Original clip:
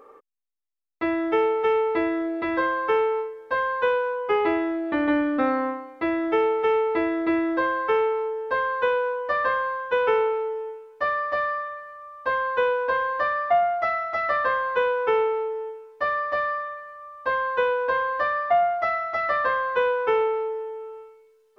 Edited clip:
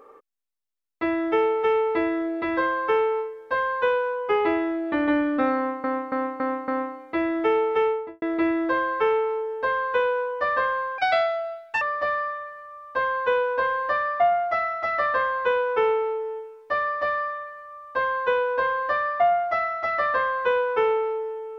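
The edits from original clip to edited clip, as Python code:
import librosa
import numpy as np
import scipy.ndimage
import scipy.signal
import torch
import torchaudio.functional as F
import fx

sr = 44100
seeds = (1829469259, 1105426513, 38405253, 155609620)

y = fx.studio_fade_out(x, sr, start_s=6.67, length_s=0.43)
y = fx.edit(y, sr, fx.repeat(start_s=5.56, length_s=0.28, count=5),
    fx.speed_span(start_s=9.86, length_s=1.26, speed=1.51), tone=tone)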